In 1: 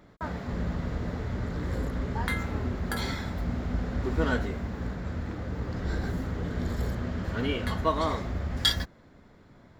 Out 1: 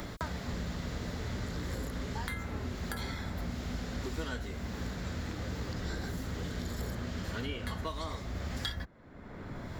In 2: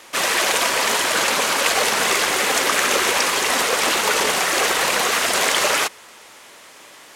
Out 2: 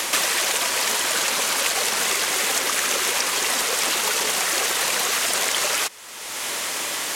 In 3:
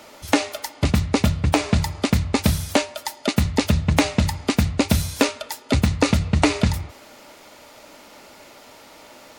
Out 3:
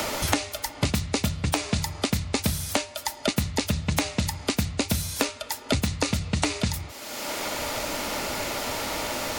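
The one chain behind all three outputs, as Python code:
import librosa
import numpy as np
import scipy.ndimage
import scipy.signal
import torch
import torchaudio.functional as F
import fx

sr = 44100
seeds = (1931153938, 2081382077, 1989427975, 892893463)

y = fx.high_shelf(x, sr, hz=3100.0, db=8.5)
y = fx.band_squash(y, sr, depth_pct=100)
y = y * librosa.db_to_amplitude(-7.5)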